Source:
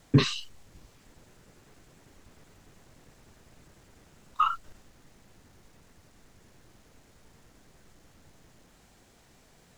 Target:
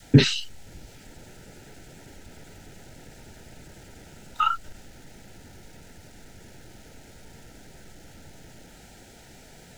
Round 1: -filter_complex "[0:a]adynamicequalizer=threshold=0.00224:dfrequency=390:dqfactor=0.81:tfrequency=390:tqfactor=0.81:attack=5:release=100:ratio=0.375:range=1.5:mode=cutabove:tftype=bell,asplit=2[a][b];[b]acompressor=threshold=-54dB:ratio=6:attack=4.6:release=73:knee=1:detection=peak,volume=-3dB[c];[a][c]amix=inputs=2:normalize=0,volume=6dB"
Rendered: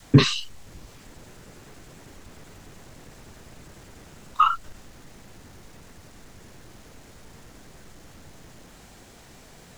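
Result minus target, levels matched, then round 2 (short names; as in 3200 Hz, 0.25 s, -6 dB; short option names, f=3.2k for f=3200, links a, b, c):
1000 Hz band +3.5 dB
-filter_complex "[0:a]adynamicequalizer=threshold=0.00224:dfrequency=390:dqfactor=0.81:tfrequency=390:tqfactor=0.81:attack=5:release=100:ratio=0.375:range=1.5:mode=cutabove:tftype=bell,asuperstop=centerf=1100:order=8:qfactor=3.5,asplit=2[a][b];[b]acompressor=threshold=-54dB:ratio=6:attack=4.6:release=73:knee=1:detection=peak,volume=-3dB[c];[a][c]amix=inputs=2:normalize=0,volume=6dB"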